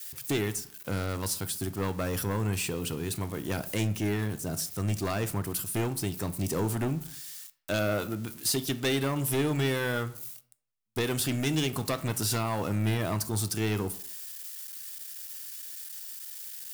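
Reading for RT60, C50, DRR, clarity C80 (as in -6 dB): 0.65 s, 16.5 dB, 11.0 dB, 19.5 dB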